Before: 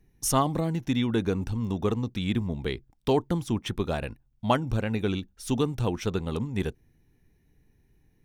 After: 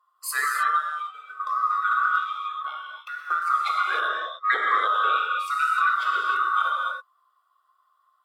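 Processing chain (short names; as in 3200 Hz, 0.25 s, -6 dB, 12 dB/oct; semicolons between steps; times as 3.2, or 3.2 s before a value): band-swap scrambler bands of 1000 Hz; steep high-pass 390 Hz 48 dB/oct; in parallel at -0.5 dB: limiter -19 dBFS, peak gain reduction 9.5 dB; 0.81–1.4 on the sum: resonator 770 Hz, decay 0.17 s, harmonics all, mix 90%; 2.16–3.29 compressor 3:1, threshold -30 dBFS, peak gain reduction 11 dB; non-linear reverb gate 0.33 s flat, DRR -3.5 dB; spectral noise reduction 11 dB; 4.08–4.81 brick-wall FIR low-pass 8500 Hz; gain -3.5 dB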